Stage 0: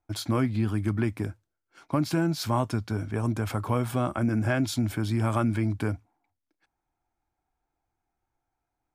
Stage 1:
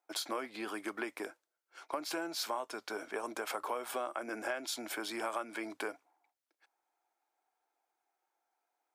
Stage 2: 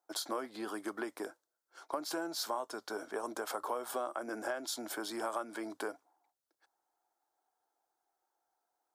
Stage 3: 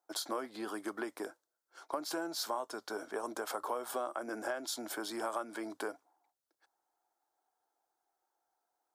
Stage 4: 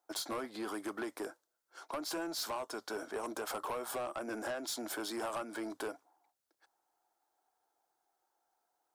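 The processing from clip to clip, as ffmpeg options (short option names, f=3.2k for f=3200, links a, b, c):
-af "highpass=f=420:w=0.5412,highpass=f=420:w=1.3066,acompressor=threshold=-35dB:ratio=5,volume=1dB"
-af "equalizer=f=2.4k:w=2.1:g=-12.5,volume=1dB"
-af anull
-af "asoftclip=type=tanh:threshold=-35dB,volume=2.5dB"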